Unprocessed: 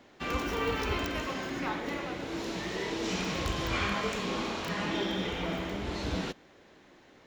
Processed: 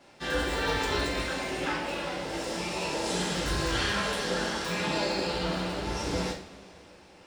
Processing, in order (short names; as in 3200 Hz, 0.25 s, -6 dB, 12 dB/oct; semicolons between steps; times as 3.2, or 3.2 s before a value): formant shift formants +5 st; two-slope reverb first 0.36 s, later 3.1 s, from -22 dB, DRR -5 dB; gain -3.5 dB